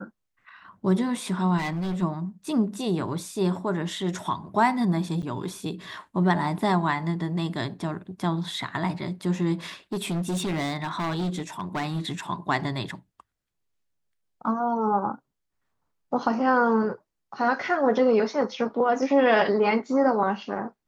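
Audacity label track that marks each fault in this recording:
1.570000	2.030000	clipped -25.5 dBFS
5.220000	5.230000	dropout 8.3 ms
9.920000	12.010000	clipped -24 dBFS

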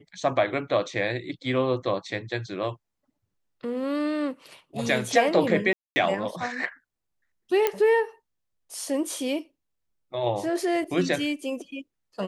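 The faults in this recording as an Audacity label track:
5.730000	5.960000	dropout 230 ms
7.670000	7.670000	pop -9 dBFS

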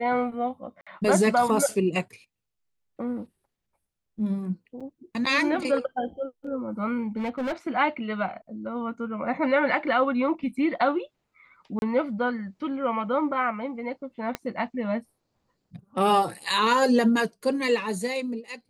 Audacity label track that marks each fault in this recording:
0.810000	0.870000	dropout 56 ms
4.800000	4.810000	dropout 5.7 ms
7.160000	7.530000	clipped -25 dBFS
11.790000	11.820000	dropout 31 ms
14.350000	14.350000	pop -14 dBFS

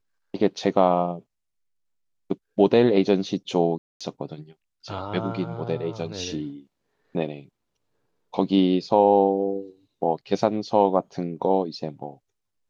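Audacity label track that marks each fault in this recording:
3.780000	4.010000	dropout 226 ms

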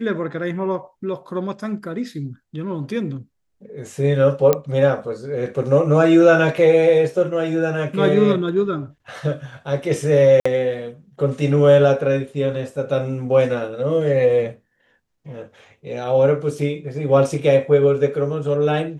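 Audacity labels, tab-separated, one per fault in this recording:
4.530000	4.530000	pop -4 dBFS
10.400000	10.460000	dropout 55 ms

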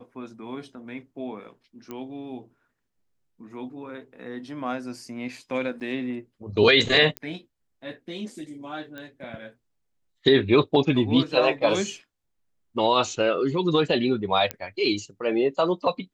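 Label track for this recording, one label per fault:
1.910000	1.910000	pop -22 dBFS
5.800000	5.810000	dropout 7.6 ms
7.170000	7.170000	pop -15 dBFS
8.980000	8.980000	pop -25 dBFS
14.510000	14.510000	pop -11 dBFS

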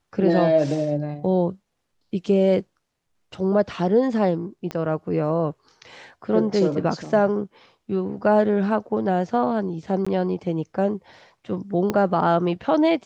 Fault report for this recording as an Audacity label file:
4.710000	4.710000	pop -16 dBFS
10.050000	10.060000	dropout 15 ms
11.900000	11.900000	pop -10 dBFS

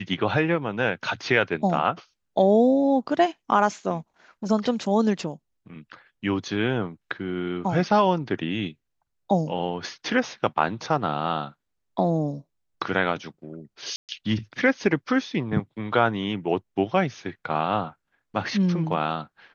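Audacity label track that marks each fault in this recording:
13.960000	14.090000	dropout 128 ms

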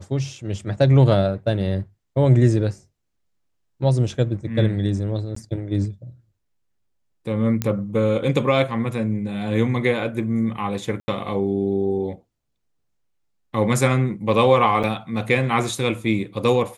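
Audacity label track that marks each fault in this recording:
5.350000	5.360000	dropout 14 ms
7.620000	7.620000	pop -8 dBFS
11.000000	11.080000	dropout 80 ms
14.830000	14.840000	dropout 6.9 ms

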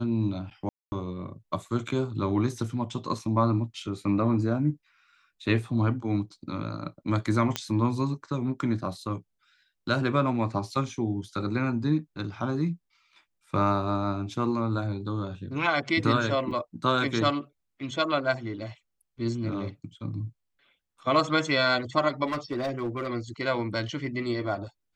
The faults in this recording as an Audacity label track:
0.690000	0.920000	dropout 230 ms
7.560000	7.560000	pop -11 dBFS
16.510000	16.510000	dropout 4.4 ms
22.260000	23.080000	clipped -25 dBFS

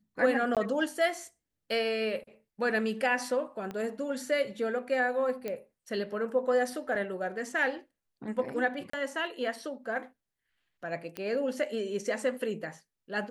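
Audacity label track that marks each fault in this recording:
0.550000	0.570000	dropout 17 ms
3.710000	3.710000	pop -25 dBFS
5.480000	5.480000	pop -21 dBFS
6.950000	6.950000	dropout 4.7 ms
8.900000	8.930000	dropout 34 ms
11.170000	11.170000	pop -21 dBFS

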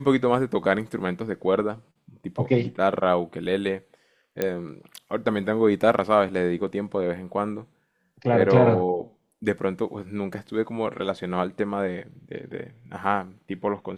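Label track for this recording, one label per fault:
4.420000	4.420000	pop -10 dBFS

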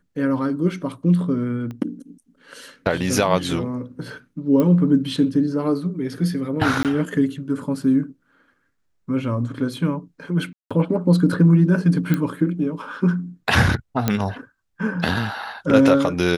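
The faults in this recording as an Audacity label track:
1.710000	1.710000	pop -22 dBFS
4.600000	4.600000	pop -10 dBFS
6.830000	6.850000	dropout 18 ms
10.530000	10.710000	dropout 176 ms
12.140000	12.140000	pop -9 dBFS
14.080000	14.080000	pop -5 dBFS

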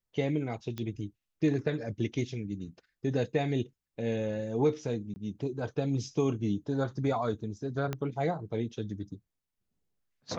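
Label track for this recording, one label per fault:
0.780000	0.780000	pop -23 dBFS
5.140000	5.160000	dropout 20 ms
7.930000	7.930000	pop -19 dBFS

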